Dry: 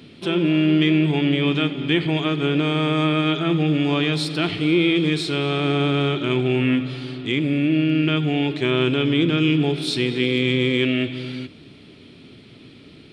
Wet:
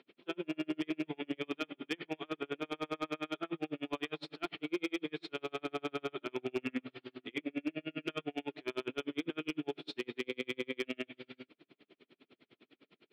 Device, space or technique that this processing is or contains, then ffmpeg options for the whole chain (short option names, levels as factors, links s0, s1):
helicopter radio: -filter_complex "[0:a]asettb=1/sr,asplit=3[s0][s1][s2];[s0]atrim=end=6.374[s3];[s1]atrim=start=6.37:end=8.24,asetpts=PTS-STARTPTS,afade=t=in:d=0.004:c=qsin,afade=t=out:st=1.866:d=0.004:c=qsin,asplit=2[s4][s5];[s5]adelay=24,volume=0.501[s6];[s4][s6]amix=inputs=2:normalize=0,atrim=end_sample=82467[s7];[s2]atrim=start=8.236[s8];[s3][s7]acrossfade=d=0.004:c1=hsin:c2=qsin[s9];[s9][s8]acrossfade=d=0.004:c1=qsin:c2=hsin,highpass=370,lowpass=2700,aeval=exprs='val(0)*pow(10,-40*(0.5-0.5*cos(2*PI*9.9*n/s))/20)':c=same,asoftclip=type=hard:threshold=0.112,volume=0.422"